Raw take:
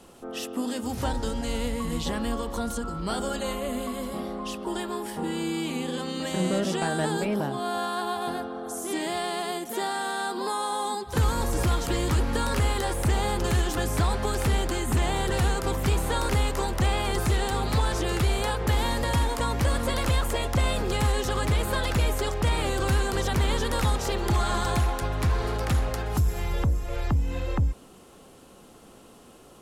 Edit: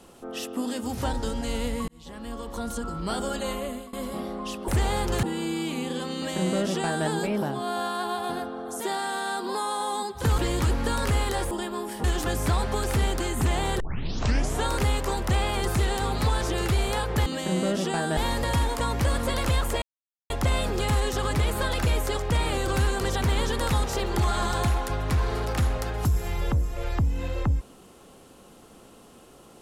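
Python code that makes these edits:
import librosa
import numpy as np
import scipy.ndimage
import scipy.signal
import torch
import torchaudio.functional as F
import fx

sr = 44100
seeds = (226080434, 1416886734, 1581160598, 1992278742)

y = fx.edit(x, sr, fx.fade_in_span(start_s=1.88, length_s=0.98),
    fx.fade_out_to(start_s=3.6, length_s=0.33, floor_db=-19.5),
    fx.swap(start_s=4.68, length_s=0.53, other_s=13.0, other_length_s=0.55),
    fx.duplicate(start_s=6.14, length_s=0.91, to_s=18.77),
    fx.cut(start_s=8.78, length_s=0.94),
    fx.cut(start_s=11.3, length_s=0.57),
    fx.tape_start(start_s=15.31, length_s=0.86),
    fx.insert_silence(at_s=20.42, length_s=0.48), tone=tone)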